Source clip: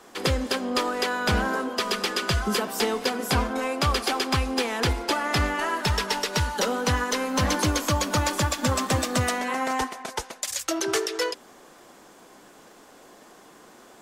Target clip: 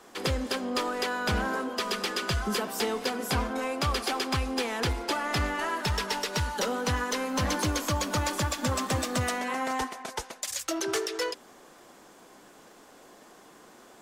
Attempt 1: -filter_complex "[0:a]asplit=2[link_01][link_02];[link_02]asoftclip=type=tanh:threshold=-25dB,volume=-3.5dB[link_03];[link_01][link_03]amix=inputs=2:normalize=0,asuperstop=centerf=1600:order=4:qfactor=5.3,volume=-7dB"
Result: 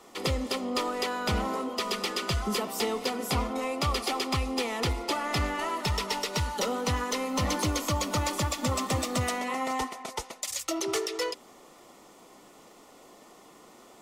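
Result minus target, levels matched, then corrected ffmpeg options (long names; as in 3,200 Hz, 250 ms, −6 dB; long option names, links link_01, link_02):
2,000 Hz band −2.5 dB
-filter_complex "[0:a]asplit=2[link_01][link_02];[link_02]asoftclip=type=tanh:threshold=-25dB,volume=-3.5dB[link_03];[link_01][link_03]amix=inputs=2:normalize=0,volume=-7dB"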